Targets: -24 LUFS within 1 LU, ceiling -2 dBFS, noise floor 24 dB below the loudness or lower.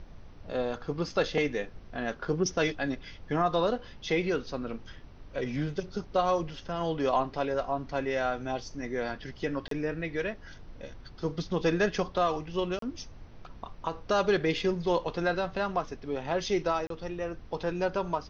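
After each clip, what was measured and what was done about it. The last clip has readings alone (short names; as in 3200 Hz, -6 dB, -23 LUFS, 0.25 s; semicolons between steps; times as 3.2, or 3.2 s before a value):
dropouts 3; longest dropout 33 ms; noise floor -49 dBFS; noise floor target -55 dBFS; loudness -31.0 LUFS; peak -14.0 dBFS; loudness target -24.0 LUFS
-> interpolate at 9.68/12.79/16.87, 33 ms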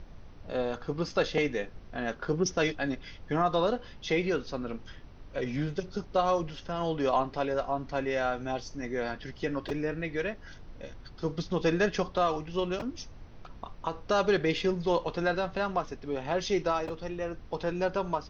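dropouts 0; noise floor -49 dBFS; noise floor target -55 dBFS
-> noise print and reduce 6 dB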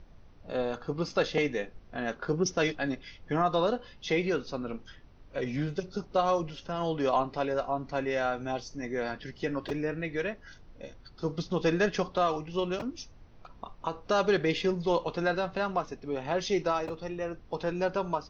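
noise floor -53 dBFS; noise floor target -55 dBFS
-> noise print and reduce 6 dB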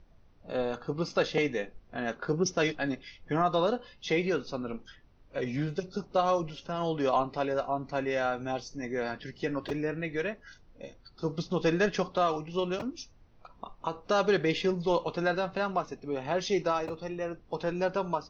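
noise floor -58 dBFS; loudness -31.0 LUFS; peak -14.0 dBFS; loudness target -24.0 LUFS
-> gain +7 dB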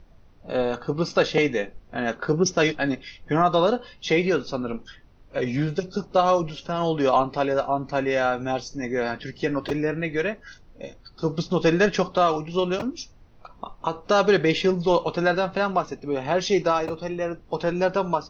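loudness -24.0 LUFS; peak -7.0 dBFS; noise floor -51 dBFS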